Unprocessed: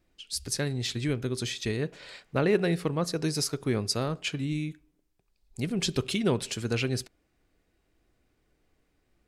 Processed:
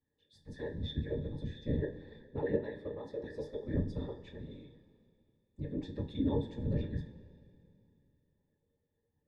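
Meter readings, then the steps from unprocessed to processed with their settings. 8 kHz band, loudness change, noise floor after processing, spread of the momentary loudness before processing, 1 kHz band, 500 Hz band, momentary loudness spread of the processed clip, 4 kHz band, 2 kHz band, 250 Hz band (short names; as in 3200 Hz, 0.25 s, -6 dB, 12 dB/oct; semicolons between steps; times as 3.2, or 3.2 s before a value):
under -35 dB, -8.5 dB, -81 dBFS, 9 LU, -13.0 dB, -8.0 dB, 14 LU, -19.0 dB, -16.5 dB, -7.5 dB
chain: octave resonator A, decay 0.23 s; whisperiser; two-slope reverb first 0.25 s, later 2.7 s, from -18 dB, DRR 4 dB; gain +2 dB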